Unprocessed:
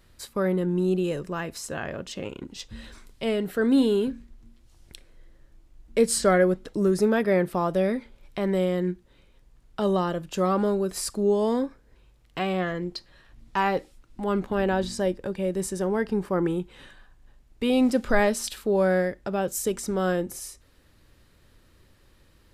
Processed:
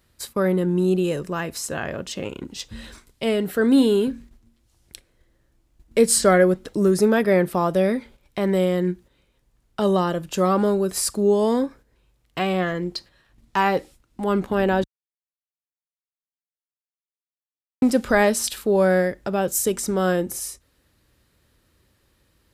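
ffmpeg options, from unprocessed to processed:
-filter_complex "[0:a]asplit=3[a][b][c];[a]atrim=end=14.84,asetpts=PTS-STARTPTS,afade=t=out:st=14.836:d=0.004:c=hsin[d];[b]atrim=start=14.84:end=17.82,asetpts=PTS-STARTPTS,volume=0[e];[c]atrim=start=17.82,asetpts=PTS-STARTPTS,afade=t=in:d=0.004:c=hsin[f];[d][e][f]concat=n=3:v=0:a=1,agate=range=-8dB:threshold=-46dB:ratio=16:detection=peak,highpass=42,highshelf=f=7.7k:g=6,volume=4dB"

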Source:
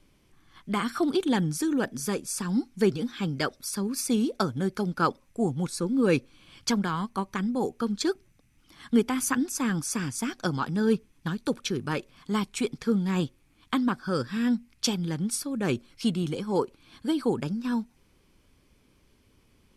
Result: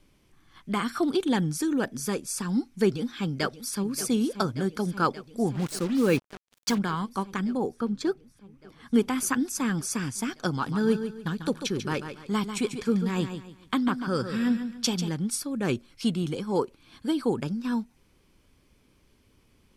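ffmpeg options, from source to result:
-filter_complex "[0:a]asplit=2[a][b];[b]afade=t=in:st=2.84:d=0.01,afade=t=out:st=3.93:d=0.01,aecho=0:1:580|1160|1740|2320|2900|3480|4060|4640|5220|5800|6380|6960:0.188365|0.16011|0.136094|0.11568|0.0983277|0.0835785|0.0710417|0.0603855|0.0513277|0.0436285|0.0370842|0.0315216[c];[a][c]amix=inputs=2:normalize=0,asplit=3[d][e][f];[d]afade=t=out:st=5.54:d=0.02[g];[e]acrusher=bits=5:mix=0:aa=0.5,afade=t=in:st=5.54:d=0.02,afade=t=out:st=6.77:d=0.02[h];[f]afade=t=in:st=6.77:d=0.02[i];[g][h][i]amix=inputs=3:normalize=0,asettb=1/sr,asplit=3[j][k][l];[j]atrim=end=7.574[m];[k]atrim=start=7.57:end=8.94,asetpts=PTS-STARTPTS,afade=t=in:d=0.004:c=qsin,afade=t=out:st=1.366:d=0.004:c=qsin,highshelf=f=2.3k:g=-10[n];[l]atrim=start=8.936[o];[m][n]acrossfade=d=0.004:c1=hsin:c2=qsin[p];[p][o]acrossfade=d=0.004:c1=qsin:c2=hsin,asettb=1/sr,asplit=3[q][r][s];[q]atrim=end=10.524[t];[r]atrim=start=10.52:end=15.09,asetpts=PTS-STARTPTS,afade=t=in:d=0.004:c=qsin,afade=t=out:st=4.566:d=0.004:c=qsin,aecho=1:1:143|286|429|572:0.355|0.114|0.0363|0.0116,atrim=end_sample=201537[u];[s]atrim=start=15.086[v];[t][u]acrossfade=d=0.004:c1=hsin:c2=qsin[w];[w][v]acrossfade=d=0.004:c1=qsin:c2=hsin"

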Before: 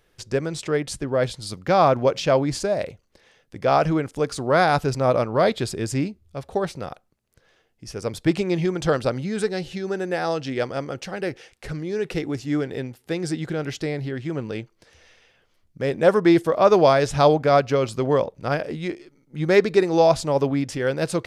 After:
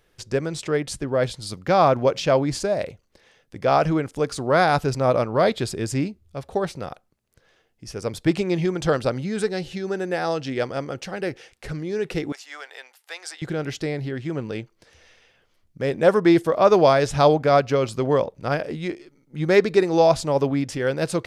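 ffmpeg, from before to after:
-filter_complex "[0:a]asettb=1/sr,asplit=3[a][b][c];[a]atrim=end=12.324[d];[b]atrim=start=12.32:end=13.42,asetpts=PTS-STARTPTS,afade=t=in:d=0.004:c=qsin,afade=t=out:st=1.096:d=0.004:c=qsin,highpass=f=780:w=0.5412,highpass=f=780:w=1.3066[e];[c]atrim=start=13.416[f];[d][e]acrossfade=d=0.004:c1=hsin:c2=qsin[g];[g][f]acrossfade=d=0.004:c1=qsin:c2=hsin"

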